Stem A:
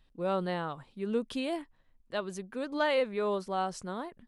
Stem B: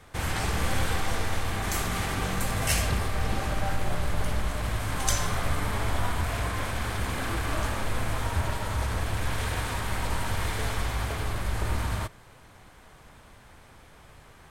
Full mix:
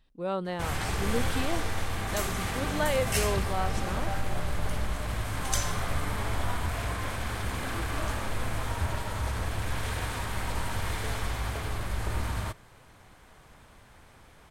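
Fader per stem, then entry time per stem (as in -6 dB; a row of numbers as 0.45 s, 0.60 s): -0.5 dB, -2.5 dB; 0.00 s, 0.45 s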